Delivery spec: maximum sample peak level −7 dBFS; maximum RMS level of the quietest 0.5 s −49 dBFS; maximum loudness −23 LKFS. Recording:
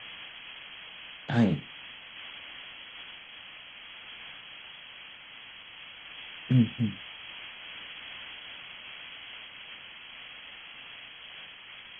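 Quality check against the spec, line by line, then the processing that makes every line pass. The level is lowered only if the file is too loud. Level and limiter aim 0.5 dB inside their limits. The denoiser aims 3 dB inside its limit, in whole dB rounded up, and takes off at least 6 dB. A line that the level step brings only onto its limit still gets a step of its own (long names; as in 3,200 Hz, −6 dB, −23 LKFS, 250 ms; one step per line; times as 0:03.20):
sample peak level −12.5 dBFS: in spec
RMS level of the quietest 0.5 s −48 dBFS: out of spec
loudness −36.5 LKFS: in spec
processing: broadband denoise 6 dB, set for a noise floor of −48 dBFS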